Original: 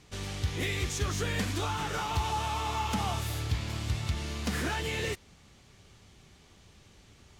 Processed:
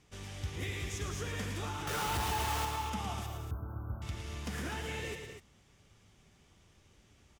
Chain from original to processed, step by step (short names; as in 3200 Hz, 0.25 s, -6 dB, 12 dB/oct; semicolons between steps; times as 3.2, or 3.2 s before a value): bell 4200 Hz -7.5 dB 0.21 oct; 1.87–2.65 companded quantiser 2-bit; 3.26–4.02 brick-wall FIR band-stop 1600–13000 Hz; loudspeakers at several distances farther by 38 m -7 dB, 64 m -12 dB, 85 m -9 dB; gain -8 dB